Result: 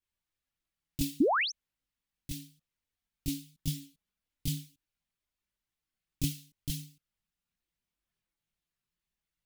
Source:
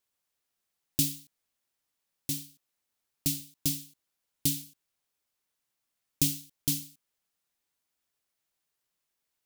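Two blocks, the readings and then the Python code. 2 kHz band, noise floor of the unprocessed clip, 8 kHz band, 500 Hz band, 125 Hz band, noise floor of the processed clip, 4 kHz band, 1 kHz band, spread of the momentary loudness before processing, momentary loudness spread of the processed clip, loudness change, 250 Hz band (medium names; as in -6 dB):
+13.5 dB, -84 dBFS, -10.0 dB, +18.0 dB, 0.0 dB, under -85 dBFS, -2.5 dB, no reading, 14 LU, 17 LU, -3.5 dB, +2.0 dB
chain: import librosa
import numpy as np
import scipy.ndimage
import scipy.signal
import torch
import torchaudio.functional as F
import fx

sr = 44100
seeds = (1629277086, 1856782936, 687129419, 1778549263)

y = fx.high_shelf(x, sr, hz=2000.0, db=12.0)
y = fx.chorus_voices(y, sr, voices=6, hz=0.51, base_ms=21, depth_ms=3.4, mix_pct=65)
y = fx.spec_paint(y, sr, seeds[0], shape='rise', start_s=1.2, length_s=0.32, low_hz=240.0, high_hz=6600.0, level_db=-20.0)
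y = fx.bass_treble(y, sr, bass_db=15, treble_db=-13)
y = y * librosa.db_to_amplitude(-7.0)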